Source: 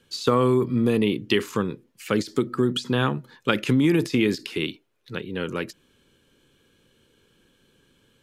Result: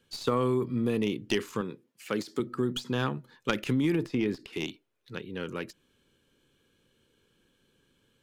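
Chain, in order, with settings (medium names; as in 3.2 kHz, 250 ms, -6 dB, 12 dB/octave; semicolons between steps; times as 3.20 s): tracing distortion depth 0.057 ms; 1.61–2.40 s: Bessel high-pass 170 Hz; 3.95–4.53 s: treble shelf 3.2 kHz -12 dB; trim -7 dB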